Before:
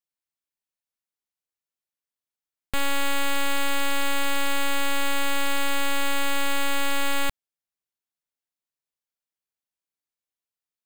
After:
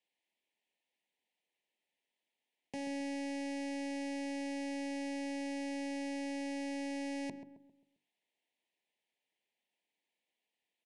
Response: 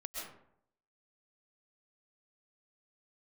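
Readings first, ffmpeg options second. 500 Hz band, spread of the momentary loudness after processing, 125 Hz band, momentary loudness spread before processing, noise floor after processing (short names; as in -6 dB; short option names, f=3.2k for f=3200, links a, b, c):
-9.5 dB, 3 LU, under -20 dB, 1 LU, under -85 dBFS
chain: -filter_complex "[0:a]highpass=f=200:w=0.5412,highpass=f=200:w=1.3066,acrossover=split=5300[a][b];[b]acompressor=threshold=-49dB:ratio=4:attack=1:release=60[c];[a][c]amix=inputs=2:normalize=0,highshelf=f=4.1k:t=q:w=1.5:g=-10,bandreject=f=50:t=h:w=6,bandreject=f=100:t=h:w=6,bandreject=f=150:t=h:w=6,bandreject=f=200:t=h:w=6,bandreject=f=250:t=h:w=6,bandreject=f=300:t=h:w=6,bandreject=f=350:t=h:w=6,alimiter=limit=-23.5dB:level=0:latency=1:release=486,aeval=exprs='(tanh(200*val(0)+0.25)-tanh(0.25))/200':c=same,asuperstop=centerf=1300:order=8:qfactor=1.7,asplit=2[d][e];[e]adelay=133,lowpass=f=1.2k:p=1,volume=-9dB,asplit=2[f][g];[g]adelay=133,lowpass=f=1.2k:p=1,volume=0.43,asplit=2[h][i];[i]adelay=133,lowpass=f=1.2k:p=1,volume=0.43,asplit=2[j][k];[k]adelay=133,lowpass=f=1.2k:p=1,volume=0.43,asplit=2[l][m];[m]adelay=133,lowpass=f=1.2k:p=1,volume=0.43[n];[d][f][h][j][l][n]amix=inputs=6:normalize=0,aresample=22050,aresample=44100,volume=9.5dB"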